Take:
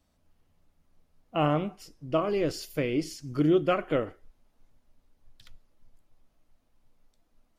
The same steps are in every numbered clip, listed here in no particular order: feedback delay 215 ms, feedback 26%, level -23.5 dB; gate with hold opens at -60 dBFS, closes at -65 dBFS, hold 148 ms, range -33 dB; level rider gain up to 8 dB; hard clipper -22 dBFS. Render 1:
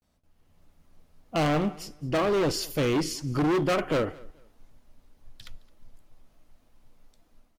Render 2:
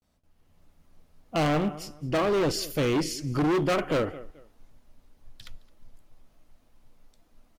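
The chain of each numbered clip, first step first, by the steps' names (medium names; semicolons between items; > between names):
gate with hold > level rider > hard clipper > feedback delay; gate with hold > feedback delay > level rider > hard clipper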